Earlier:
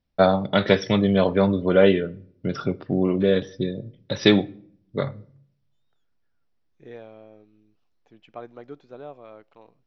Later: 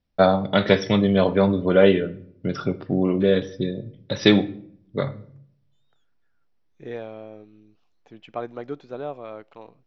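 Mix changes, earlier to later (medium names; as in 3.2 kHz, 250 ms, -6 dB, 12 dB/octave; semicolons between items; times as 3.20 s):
first voice: send +7.0 dB; second voice +7.5 dB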